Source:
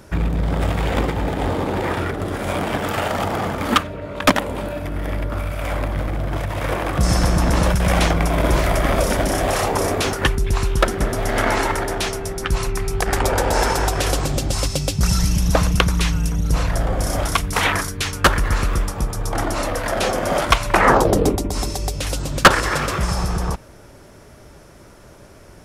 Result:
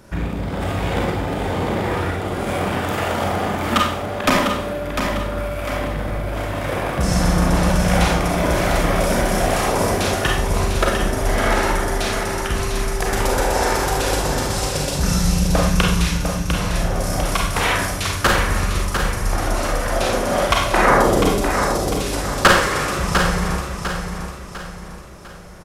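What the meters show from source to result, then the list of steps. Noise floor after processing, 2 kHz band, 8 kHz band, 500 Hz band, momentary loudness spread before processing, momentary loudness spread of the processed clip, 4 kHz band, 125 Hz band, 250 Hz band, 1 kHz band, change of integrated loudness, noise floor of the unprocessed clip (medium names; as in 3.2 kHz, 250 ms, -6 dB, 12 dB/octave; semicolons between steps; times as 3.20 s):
-32 dBFS, +1.0 dB, +1.0 dB, +1.0 dB, 7 LU, 8 LU, +1.0 dB, -0.5 dB, +1.5 dB, +1.0 dB, +0.5 dB, -44 dBFS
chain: on a send: feedback delay 700 ms, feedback 41%, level -6.5 dB; on the sum: Schroeder reverb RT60 0.55 s, combs from 31 ms, DRR -1 dB; trim -3.5 dB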